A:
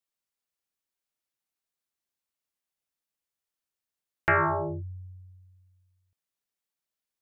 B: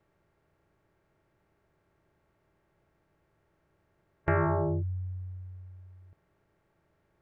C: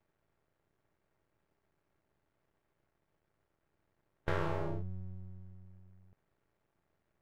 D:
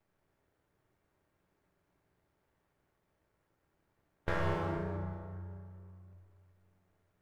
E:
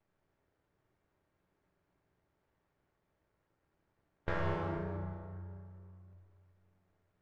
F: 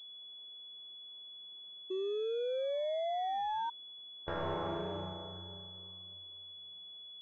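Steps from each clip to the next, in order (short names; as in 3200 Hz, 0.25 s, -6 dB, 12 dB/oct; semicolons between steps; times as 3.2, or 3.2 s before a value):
per-bin compression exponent 0.6; tilt shelf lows +9.5 dB, about 880 Hz; gain -6 dB
half-wave rectifier; gain -4 dB
plate-style reverb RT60 2.3 s, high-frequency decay 0.6×, DRR 0.5 dB
air absorption 85 m; gain -1.5 dB
painted sound rise, 1.9–3.7, 370–940 Hz -38 dBFS; overdrive pedal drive 22 dB, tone 1100 Hz, clips at -20 dBFS; pulse-width modulation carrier 3400 Hz; gain -5.5 dB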